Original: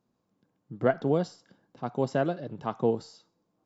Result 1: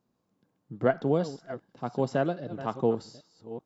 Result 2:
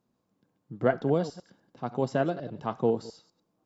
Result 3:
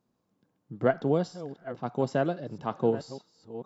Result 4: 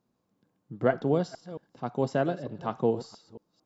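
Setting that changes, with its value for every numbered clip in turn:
chunks repeated in reverse, time: 401 ms, 100 ms, 645 ms, 225 ms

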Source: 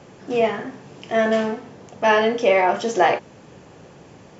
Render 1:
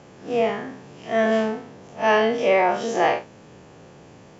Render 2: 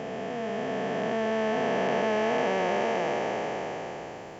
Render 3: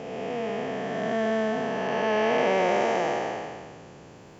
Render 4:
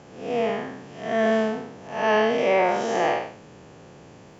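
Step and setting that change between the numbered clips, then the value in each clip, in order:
spectral blur, width: 83 ms, 1710 ms, 655 ms, 208 ms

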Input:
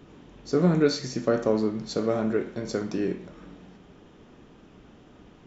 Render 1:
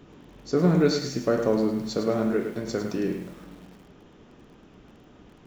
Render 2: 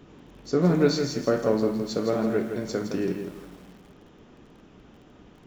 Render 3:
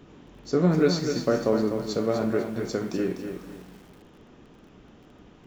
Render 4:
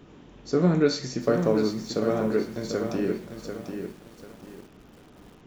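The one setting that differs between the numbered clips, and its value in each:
bit-crushed delay, time: 105 ms, 164 ms, 249 ms, 743 ms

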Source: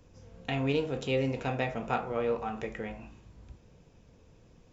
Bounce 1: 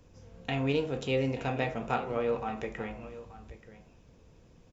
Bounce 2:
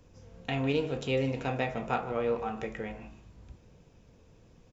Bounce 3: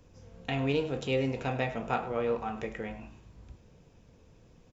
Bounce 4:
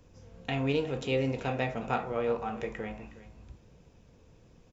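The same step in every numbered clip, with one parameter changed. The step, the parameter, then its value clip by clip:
delay, time: 880 ms, 152 ms, 102 ms, 364 ms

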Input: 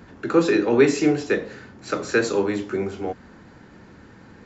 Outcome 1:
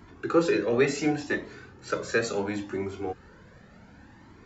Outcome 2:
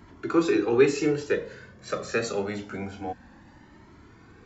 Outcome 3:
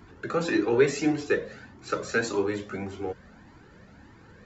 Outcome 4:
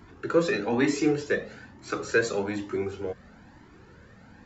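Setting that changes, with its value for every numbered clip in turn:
Shepard-style flanger, rate: 0.7 Hz, 0.26 Hz, 1.7 Hz, 1.1 Hz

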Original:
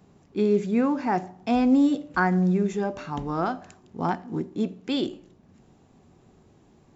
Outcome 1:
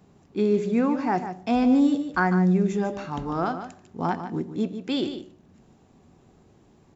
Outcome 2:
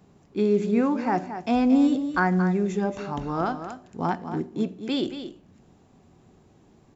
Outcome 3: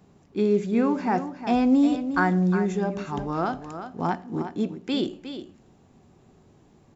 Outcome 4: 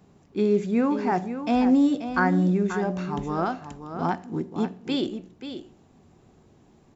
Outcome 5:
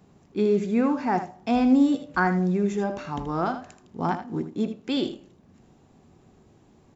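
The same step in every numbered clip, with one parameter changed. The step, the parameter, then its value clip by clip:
delay, time: 148 ms, 227 ms, 359 ms, 534 ms, 79 ms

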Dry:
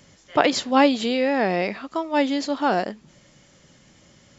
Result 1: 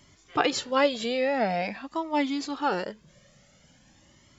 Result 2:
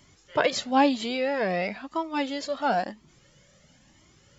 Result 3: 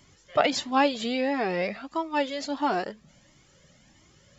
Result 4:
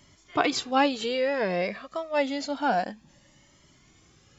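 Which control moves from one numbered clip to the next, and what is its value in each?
Shepard-style flanger, rate: 0.47 Hz, 1 Hz, 1.5 Hz, 0.28 Hz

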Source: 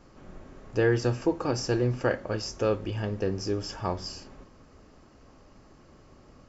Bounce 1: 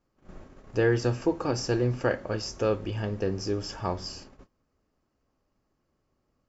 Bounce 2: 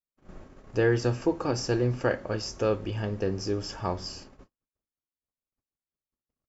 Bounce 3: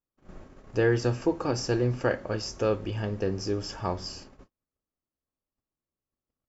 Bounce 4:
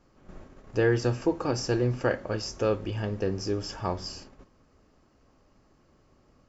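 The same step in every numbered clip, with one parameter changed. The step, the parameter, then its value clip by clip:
gate, range: -21 dB, -53 dB, -40 dB, -8 dB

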